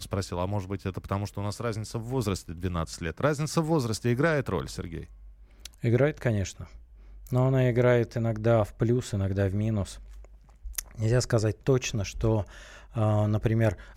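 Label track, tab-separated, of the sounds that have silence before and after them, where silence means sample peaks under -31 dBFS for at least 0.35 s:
5.650000	6.630000	sound
7.270000	9.900000	sound
10.660000	12.420000	sound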